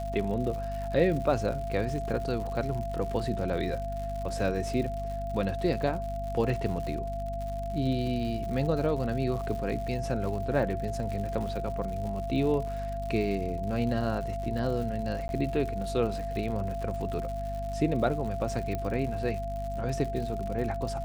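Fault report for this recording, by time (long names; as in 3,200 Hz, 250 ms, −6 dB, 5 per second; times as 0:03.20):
surface crackle 130 per second −36 dBFS
mains hum 50 Hz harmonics 5 −36 dBFS
whistle 680 Hz −34 dBFS
0:15.28–0:15.29: drop-out
0:18.75: click −20 dBFS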